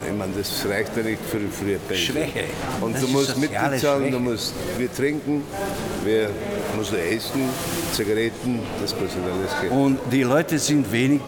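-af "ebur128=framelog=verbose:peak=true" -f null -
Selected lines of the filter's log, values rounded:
Integrated loudness:
  I:         -23.3 LUFS
  Threshold: -33.3 LUFS
Loudness range:
  LRA:         2.5 LU
  Threshold: -43.6 LUFS
  LRA low:   -24.6 LUFS
  LRA high:  -22.2 LUFS
True peak:
  Peak:       -7.6 dBFS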